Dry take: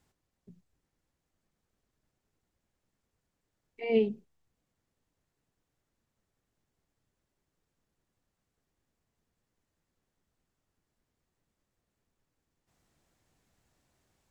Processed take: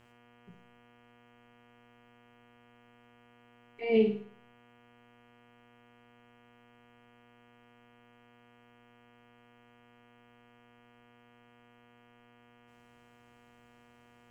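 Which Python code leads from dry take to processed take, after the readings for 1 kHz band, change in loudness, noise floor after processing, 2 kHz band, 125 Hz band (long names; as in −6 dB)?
+2.5 dB, +1.0 dB, −62 dBFS, +2.0 dB, +2.5 dB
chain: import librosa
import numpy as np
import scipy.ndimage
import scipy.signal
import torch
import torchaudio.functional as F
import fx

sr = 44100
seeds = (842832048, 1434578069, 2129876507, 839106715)

y = fx.dmg_buzz(x, sr, base_hz=120.0, harmonics=27, level_db=-63.0, tilt_db=-3, odd_only=False)
y = fx.room_flutter(y, sr, wall_m=9.3, rt60_s=0.47)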